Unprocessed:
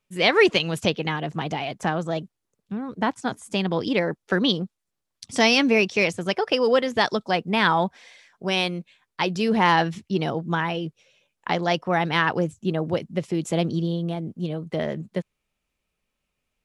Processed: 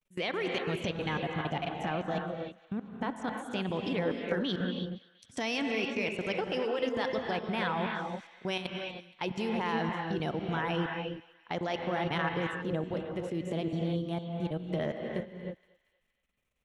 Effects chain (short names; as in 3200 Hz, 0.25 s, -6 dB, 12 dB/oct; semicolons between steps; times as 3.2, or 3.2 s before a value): bell 4800 Hz -8 dB 0.26 oct; in parallel at +2.5 dB: compressor 4:1, threshold -30 dBFS, peak gain reduction 15 dB; on the sum: limiter -11 dBFS, peak gain reduction 8 dB; level quantiser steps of 24 dB; thinning echo 0.235 s, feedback 56%, high-pass 1100 Hz, level -18 dB; on a send at -2 dB: reverb, pre-delay 3 ms; on the sum: gain -8.5 dB